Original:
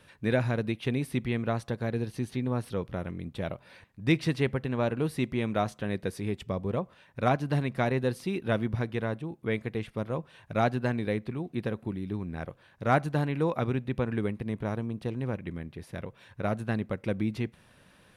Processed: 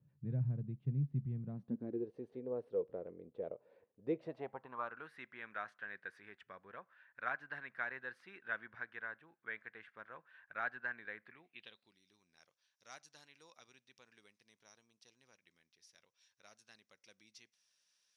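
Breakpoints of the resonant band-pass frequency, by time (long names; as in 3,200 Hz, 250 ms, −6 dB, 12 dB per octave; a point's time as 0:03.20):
resonant band-pass, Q 5.5
0:01.41 140 Hz
0:02.15 470 Hz
0:04.10 470 Hz
0:05.06 1,600 Hz
0:11.26 1,600 Hz
0:12.00 5,700 Hz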